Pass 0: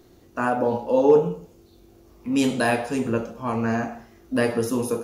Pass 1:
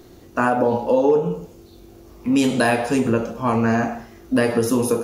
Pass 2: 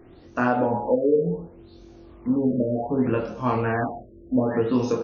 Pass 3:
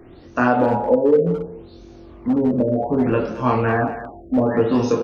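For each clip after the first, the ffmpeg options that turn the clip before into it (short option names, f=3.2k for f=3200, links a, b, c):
-af "acompressor=threshold=-22dB:ratio=4,volume=7.5dB"
-filter_complex "[0:a]asplit=2[a][b];[b]adelay=24,volume=-3.5dB[c];[a][c]amix=inputs=2:normalize=0,afftfilt=real='re*lt(b*sr/1024,610*pow(6800/610,0.5+0.5*sin(2*PI*0.66*pts/sr)))':imag='im*lt(b*sr/1024,610*pow(6800/610,0.5+0.5*sin(2*PI*0.66*pts/sr)))':win_size=1024:overlap=0.75,volume=-4.5dB"
-filter_complex "[0:a]asplit=2[a][b];[b]adelay=220,highpass=300,lowpass=3.4k,asoftclip=type=hard:threshold=-17.5dB,volume=-12dB[c];[a][c]amix=inputs=2:normalize=0,acrossover=split=390[d][e];[d]volume=21dB,asoftclip=hard,volume=-21dB[f];[f][e]amix=inputs=2:normalize=0,volume=5dB"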